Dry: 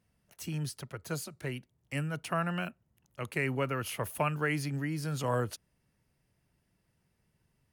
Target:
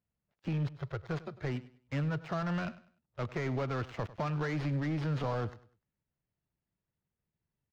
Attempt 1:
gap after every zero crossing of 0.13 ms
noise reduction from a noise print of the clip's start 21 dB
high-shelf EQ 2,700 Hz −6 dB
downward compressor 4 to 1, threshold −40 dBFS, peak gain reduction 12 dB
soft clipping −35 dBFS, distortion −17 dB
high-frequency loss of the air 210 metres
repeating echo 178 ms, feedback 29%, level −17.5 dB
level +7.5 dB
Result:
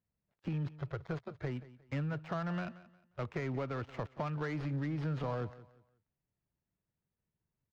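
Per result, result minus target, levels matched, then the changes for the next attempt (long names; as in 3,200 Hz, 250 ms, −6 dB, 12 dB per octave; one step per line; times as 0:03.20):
echo 79 ms late; downward compressor: peak gain reduction +5.5 dB; 4,000 Hz band −2.5 dB
change: repeating echo 99 ms, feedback 29%, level −17.5 dB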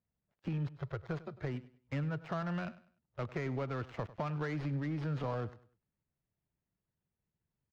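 downward compressor: peak gain reduction +5.5 dB; 4,000 Hz band −2.5 dB
change: downward compressor 4 to 1, threshold −32.5 dBFS, peak gain reduction 6.5 dB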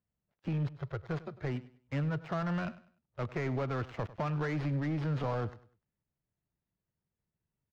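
4,000 Hz band −3.0 dB
remove: high-shelf EQ 2,700 Hz −6 dB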